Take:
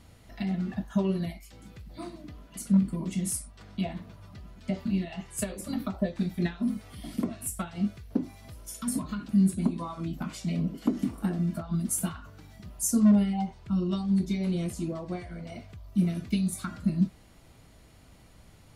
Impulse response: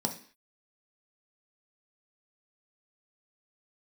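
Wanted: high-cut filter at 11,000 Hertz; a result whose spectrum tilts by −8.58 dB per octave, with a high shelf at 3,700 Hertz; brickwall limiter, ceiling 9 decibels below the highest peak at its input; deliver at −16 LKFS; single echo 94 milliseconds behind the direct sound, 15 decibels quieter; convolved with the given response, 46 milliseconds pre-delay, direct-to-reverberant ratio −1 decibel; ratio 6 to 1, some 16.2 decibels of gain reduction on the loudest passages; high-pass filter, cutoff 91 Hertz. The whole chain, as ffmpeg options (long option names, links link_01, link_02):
-filter_complex "[0:a]highpass=91,lowpass=11000,highshelf=frequency=3700:gain=8,acompressor=threshold=-36dB:ratio=6,alimiter=level_in=8dB:limit=-24dB:level=0:latency=1,volume=-8dB,aecho=1:1:94:0.178,asplit=2[link_01][link_02];[1:a]atrim=start_sample=2205,adelay=46[link_03];[link_02][link_03]afir=irnorm=-1:irlink=0,volume=-4dB[link_04];[link_01][link_04]amix=inputs=2:normalize=0,volume=16.5dB"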